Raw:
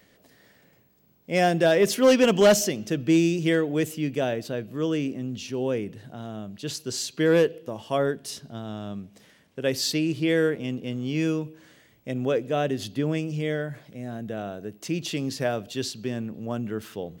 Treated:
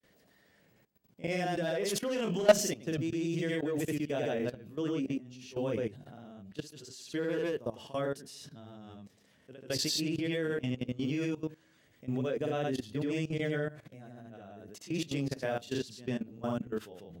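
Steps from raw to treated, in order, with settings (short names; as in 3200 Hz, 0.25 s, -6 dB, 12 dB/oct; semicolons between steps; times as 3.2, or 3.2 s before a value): grains 0.122 s, grains 28/s, spray 0.1 s, pitch spread up and down by 0 st; level quantiser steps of 17 dB; gain +2 dB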